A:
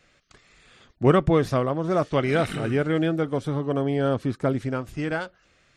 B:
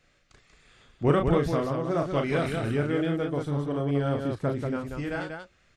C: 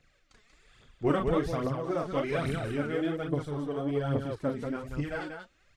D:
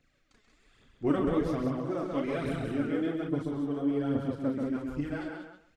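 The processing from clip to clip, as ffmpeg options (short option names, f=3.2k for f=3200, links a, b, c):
-af "lowshelf=f=62:g=8.5,aecho=1:1:34.99|186.6:0.562|0.562,volume=-6dB"
-af "aphaser=in_gain=1:out_gain=1:delay=4.9:decay=0.58:speed=1.2:type=triangular,volume=-5dB"
-filter_complex "[0:a]equalizer=f=270:t=o:w=0.64:g=8.5,asplit=2[a][b];[b]adelay=134,lowpass=f=4.3k:p=1,volume=-4.5dB,asplit=2[c][d];[d]adelay=134,lowpass=f=4.3k:p=1,volume=0.2,asplit=2[e][f];[f]adelay=134,lowpass=f=4.3k:p=1,volume=0.2[g];[c][e][g]amix=inputs=3:normalize=0[h];[a][h]amix=inputs=2:normalize=0,volume=-5dB"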